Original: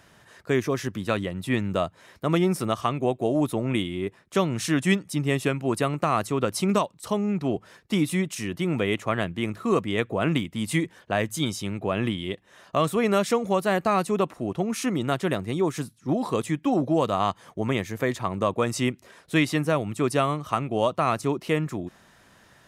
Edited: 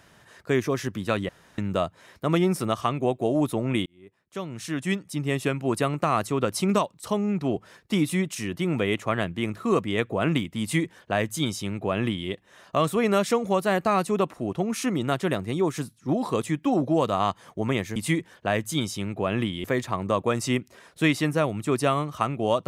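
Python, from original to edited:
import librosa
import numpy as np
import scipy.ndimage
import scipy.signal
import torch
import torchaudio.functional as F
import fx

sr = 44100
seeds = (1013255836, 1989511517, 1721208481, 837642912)

y = fx.edit(x, sr, fx.room_tone_fill(start_s=1.29, length_s=0.29),
    fx.fade_in_span(start_s=3.86, length_s=1.82),
    fx.duplicate(start_s=10.61, length_s=1.68, to_s=17.96), tone=tone)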